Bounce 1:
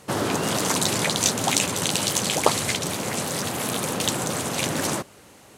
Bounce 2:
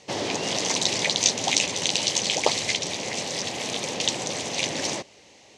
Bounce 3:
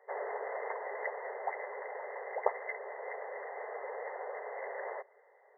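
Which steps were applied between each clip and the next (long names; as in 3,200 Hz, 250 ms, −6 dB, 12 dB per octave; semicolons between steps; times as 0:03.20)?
drawn EQ curve 160 Hz 0 dB, 550 Hz +7 dB, 870 Hz +6 dB, 1,400 Hz −5 dB, 2,000 Hz +10 dB, 6,100 Hz +12 dB, 15,000 Hz −24 dB; level −9 dB
linear-phase brick-wall band-pass 390–2,100 Hz; level −6.5 dB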